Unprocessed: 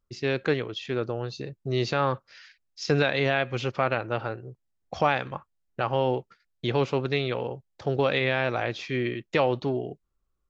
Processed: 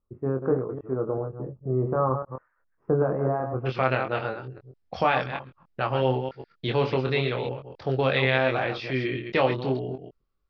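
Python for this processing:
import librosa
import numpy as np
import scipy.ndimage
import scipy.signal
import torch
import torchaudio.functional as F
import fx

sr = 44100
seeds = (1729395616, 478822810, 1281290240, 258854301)

y = fx.reverse_delay(x, sr, ms=131, wet_db=-7.5)
y = fx.ellip_lowpass(y, sr, hz=fx.steps((0.0, 1200.0), (3.65, 5100.0)), order=4, stop_db=70)
y = fx.doubler(y, sr, ms=23.0, db=-5.0)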